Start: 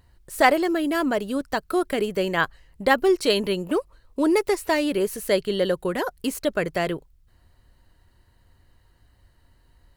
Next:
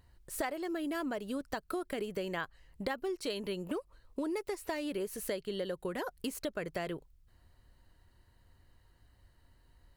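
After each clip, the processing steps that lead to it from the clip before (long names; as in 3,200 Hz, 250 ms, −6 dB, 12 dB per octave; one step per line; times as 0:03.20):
downward compressor 6 to 1, threshold −28 dBFS, peak gain reduction 15.5 dB
level −5.5 dB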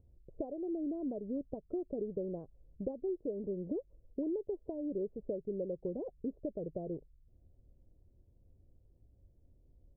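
Butterworth low-pass 590 Hz 36 dB per octave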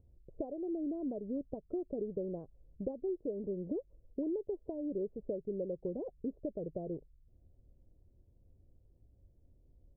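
no processing that can be heard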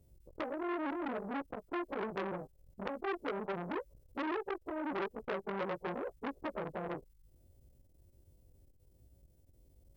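every partial snapped to a pitch grid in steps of 2 semitones
saturating transformer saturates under 1,700 Hz
level +5.5 dB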